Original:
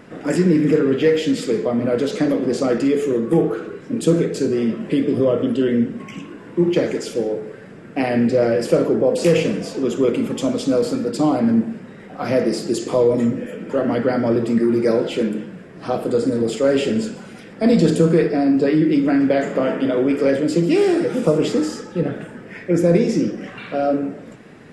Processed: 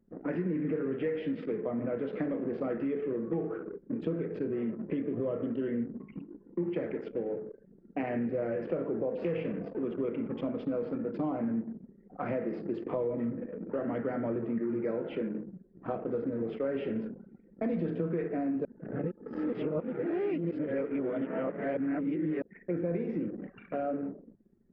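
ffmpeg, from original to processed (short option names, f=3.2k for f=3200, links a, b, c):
-filter_complex "[0:a]asplit=3[a][b][c];[a]atrim=end=18.652[d];[b]atrim=start=18.648:end=22.422,asetpts=PTS-STARTPTS,areverse[e];[c]atrim=start=22.418[f];[d][e]acrossfade=d=0.004:c1=hsin:c2=hsin[g];[g][f]acrossfade=d=0.004:c1=hsin:c2=hsin,anlmdn=63.1,lowpass=f=2.4k:w=0.5412,lowpass=f=2.4k:w=1.3066,acompressor=threshold=-24dB:ratio=3,volume=-7.5dB"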